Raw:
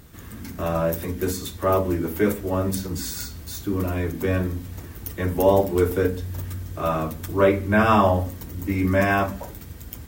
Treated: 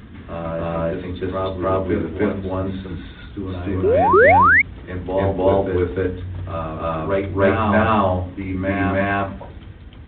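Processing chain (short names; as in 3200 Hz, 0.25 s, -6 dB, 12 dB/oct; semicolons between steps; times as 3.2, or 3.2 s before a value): painted sound rise, 4.13–4.62, 340–2300 Hz -12 dBFS; reverse echo 0.301 s -3.5 dB; G.726 40 kbps 8000 Hz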